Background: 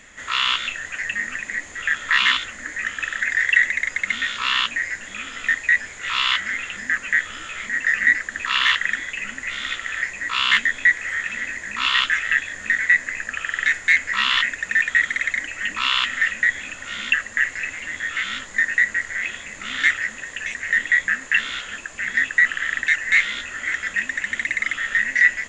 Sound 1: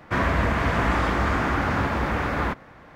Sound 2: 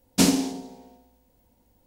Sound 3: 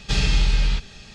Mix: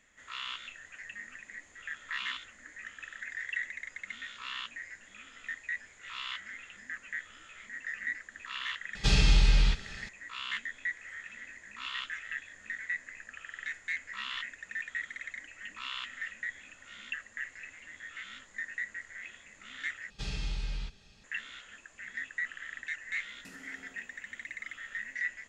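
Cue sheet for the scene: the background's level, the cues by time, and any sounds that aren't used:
background -19 dB
8.95 s: add 3 -3.5 dB
20.10 s: replace with 3 -16.5 dB
23.27 s: add 2 -18 dB + compression 5:1, threshold -34 dBFS
not used: 1

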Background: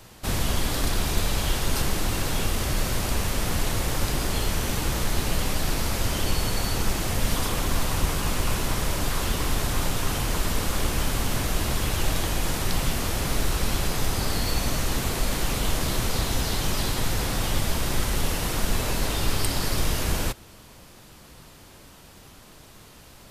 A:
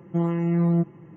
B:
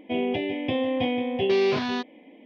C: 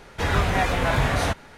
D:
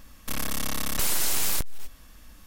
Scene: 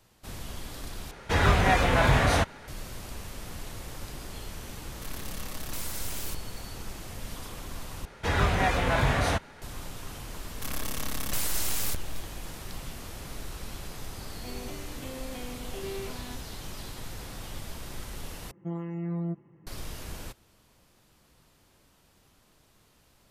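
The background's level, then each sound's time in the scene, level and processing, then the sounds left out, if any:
background -14.5 dB
1.11 s: replace with C
4.74 s: add D -11.5 dB
8.05 s: replace with C -3 dB
10.34 s: add D -5.5 dB + companding laws mixed up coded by mu
14.34 s: add B -16.5 dB
18.51 s: replace with A -11 dB

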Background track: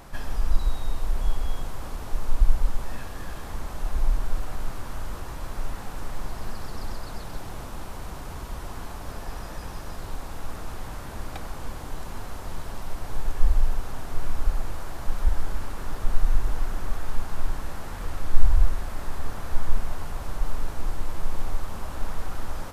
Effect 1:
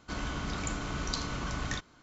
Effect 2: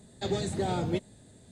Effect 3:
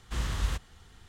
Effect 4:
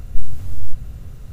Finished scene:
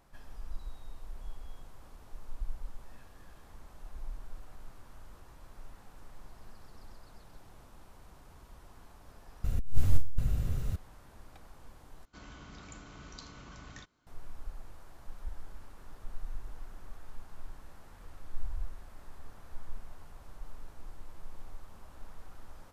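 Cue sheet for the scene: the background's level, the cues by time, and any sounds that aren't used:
background track -18.5 dB
9.44 s: replace with 4 -3 dB + compressor with a negative ratio -12 dBFS, ratio -0.5
12.05 s: replace with 1 -14.5 dB
not used: 2, 3

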